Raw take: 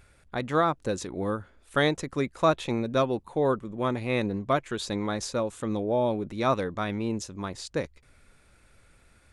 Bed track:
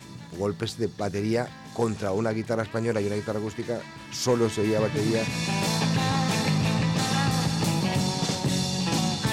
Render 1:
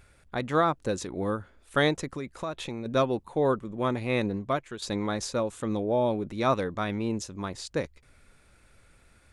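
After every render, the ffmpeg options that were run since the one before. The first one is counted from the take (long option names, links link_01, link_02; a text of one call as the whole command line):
ffmpeg -i in.wav -filter_complex "[0:a]asettb=1/sr,asplit=3[link_01][link_02][link_03];[link_01]atrim=end=2.094[link_04];[link_02]atrim=start=2.09:end=2.86,asetpts=PTS-STARTPTS,afade=type=in:duration=0.004:curve=qsin,afade=type=out:start_time=0.766:duration=0.004:curve=qsin,acompressor=threshold=-31dB:ratio=4:attack=3.2:release=140:knee=1:detection=peak[link_05];[link_03]atrim=start=2.856[link_06];[link_04][link_05]acrossfade=duration=0.004:curve1=hsin:curve2=qsin[link_07];[link_07][link_06]acrossfade=duration=0.004:curve1=qsin:curve2=hsin,asplit=2[link_08][link_09];[link_08]atrim=end=4.82,asetpts=PTS-STARTPTS,afade=type=out:start_time=4.28:duration=0.54:silence=0.354813[link_10];[link_09]atrim=start=4.82,asetpts=PTS-STARTPTS,afade=type=in:duration=0.004:curve=hsin:silence=0.354813[link_11];[link_10][link_11]concat=n=2:v=0:a=1" out.wav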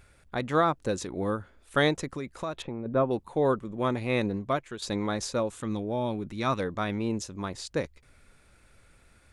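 ffmpeg -i in.wav -filter_complex "[0:a]asettb=1/sr,asplit=3[link_01][link_02][link_03];[link_01]atrim=end=2.624[link_04];[link_02]atrim=start=2.62:end=3.11,asetpts=PTS-STARTPTS,afade=type=in:duration=0.004:curve=qsin,afade=type=out:start_time=0.486:duration=0.004:curve=qsin,lowpass=1300[link_05];[link_03]atrim=start=3.106[link_06];[link_04][link_05]acrossfade=duration=0.004:curve1=hsin:curve2=qsin[link_07];[link_07][link_06]acrossfade=duration=0.004:curve1=qsin:curve2=hsin,asettb=1/sr,asplit=3[link_08][link_09][link_10];[link_08]atrim=end=5.614[link_11];[link_09]atrim=start=5.61:end=6.6,asetpts=PTS-STARTPTS,afade=type=in:duration=0.004:curve=qsin,afade=type=out:start_time=0.986:duration=0.004:curve=qsin,equalizer=frequency=550:width_type=o:width=1.3:gain=-7[link_12];[link_10]atrim=start=6.596[link_13];[link_11][link_12]acrossfade=duration=0.004:curve1=hsin:curve2=qsin[link_14];[link_14][link_13]acrossfade=duration=0.004:curve1=qsin:curve2=hsin" out.wav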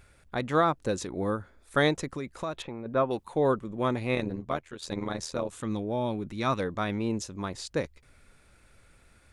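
ffmpeg -i in.wav -filter_complex "[0:a]asettb=1/sr,asplit=3[link_01][link_02][link_03];[link_01]atrim=end=1.094[link_04];[link_02]atrim=start=1.09:end=1.85,asetpts=PTS-STARTPTS,afade=type=in:duration=0.004:curve=qsin,afade=type=out:start_time=0.756:duration=0.004:curve=qsin,equalizer=frequency=2900:width_type=o:width=0.26:gain=-9.5[link_05];[link_03]atrim=start=1.846[link_06];[link_04][link_05]acrossfade=duration=0.004:curve1=hsin:curve2=qsin[link_07];[link_07][link_06]acrossfade=duration=0.004:curve1=qsin:curve2=hsin,asettb=1/sr,asplit=3[link_08][link_09][link_10];[link_08]atrim=end=2.624[link_11];[link_09]atrim=start=2.62:end=3.34,asetpts=PTS-STARTPTS,afade=type=in:duration=0.004:curve=qsin,afade=type=out:start_time=0.716:duration=0.004:curve=qsin,tiltshelf=frequency=690:gain=-4.5[link_12];[link_10]atrim=start=3.336[link_13];[link_11][link_12]acrossfade=duration=0.004:curve1=hsin:curve2=qsin[link_14];[link_14][link_13]acrossfade=duration=0.004:curve1=qsin:curve2=hsin,asplit=3[link_15][link_16][link_17];[link_15]afade=type=out:start_time=4.14:duration=0.02[link_18];[link_16]tremolo=f=82:d=0.788,afade=type=in:start_time=4.14:duration=0.02,afade=type=out:start_time=5.51:duration=0.02[link_19];[link_17]afade=type=in:start_time=5.51:duration=0.02[link_20];[link_18][link_19][link_20]amix=inputs=3:normalize=0" out.wav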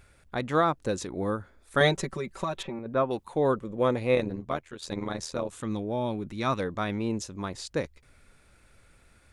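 ffmpeg -i in.wav -filter_complex "[0:a]asettb=1/sr,asplit=3[link_01][link_02][link_03];[link_01]atrim=end=1.804[link_04];[link_02]atrim=start=1.8:end=2.79,asetpts=PTS-STARTPTS,afade=type=in:duration=0.004:curve=qsin,afade=type=out:start_time=0.986:duration=0.004:curve=qsin,aecho=1:1:5.2:0.96,atrim=end_sample=43659[link_05];[link_03]atrim=start=2.786[link_06];[link_04][link_05]acrossfade=duration=0.004:curve1=hsin:curve2=qsin[link_07];[link_07][link_06]acrossfade=duration=0.004:curve1=qsin:curve2=hsin,asettb=1/sr,asplit=3[link_08][link_09][link_10];[link_08]atrim=end=3.564[link_11];[link_09]atrim=start=3.56:end=4.22,asetpts=PTS-STARTPTS,afade=type=in:duration=0.004:curve=qsin,afade=type=out:start_time=0.656:duration=0.004:curve=qsin,equalizer=frequency=500:width_type=o:width=0.32:gain=9[link_12];[link_10]atrim=start=4.216[link_13];[link_11][link_12]acrossfade=duration=0.004:curve1=hsin:curve2=qsin[link_14];[link_14][link_13]acrossfade=duration=0.004:curve1=qsin:curve2=hsin" out.wav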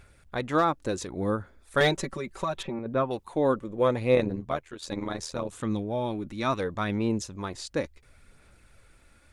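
ffmpeg -i in.wav -af "volume=13.5dB,asoftclip=hard,volume=-13.5dB,aphaser=in_gain=1:out_gain=1:delay=3.6:decay=0.29:speed=0.71:type=sinusoidal" out.wav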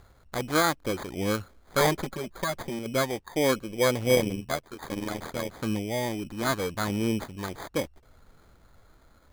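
ffmpeg -i in.wav -af "acrusher=samples=16:mix=1:aa=0.000001" out.wav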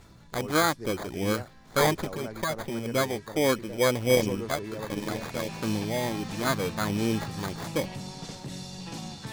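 ffmpeg -i in.wav -i bed.wav -filter_complex "[1:a]volume=-13dB[link_01];[0:a][link_01]amix=inputs=2:normalize=0" out.wav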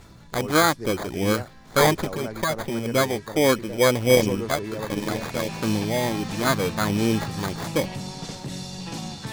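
ffmpeg -i in.wav -af "volume=5dB" out.wav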